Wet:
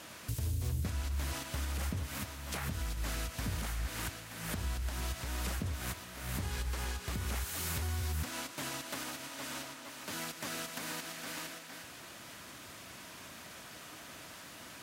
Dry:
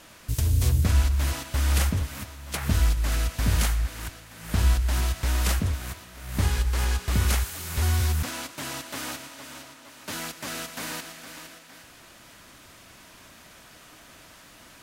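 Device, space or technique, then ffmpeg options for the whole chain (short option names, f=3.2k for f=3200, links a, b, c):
podcast mastering chain: -af "highpass=79,deesser=0.55,acompressor=threshold=-31dB:ratio=3,alimiter=level_in=2.5dB:limit=-24dB:level=0:latency=1:release=344,volume=-2.5dB,volume=1dB" -ar 48000 -c:a libmp3lame -b:a 96k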